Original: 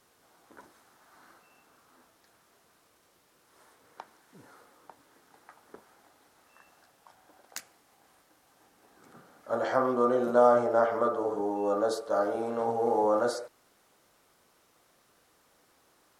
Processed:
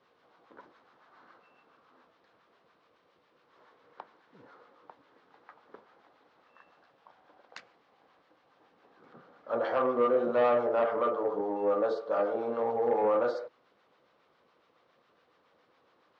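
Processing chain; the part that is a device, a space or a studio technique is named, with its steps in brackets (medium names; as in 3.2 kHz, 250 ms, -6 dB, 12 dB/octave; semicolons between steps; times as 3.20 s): guitar amplifier with harmonic tremolo (harmonic tremolo 7.2 Hz, depth 50%, crossover 840 Hz; saturation -22.5 dBFS, distortion -13 dB; cabinet simulation 93–4000 Hz, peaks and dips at 100 Hz -4 dB, 500 Hz +6 dB, 1.1 kHz +4 dB)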